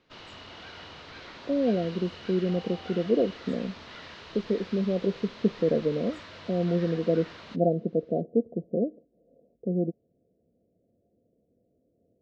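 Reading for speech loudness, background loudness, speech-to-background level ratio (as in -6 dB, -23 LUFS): -28.5 LUFS, -44.0 LUFS, 15.5 dB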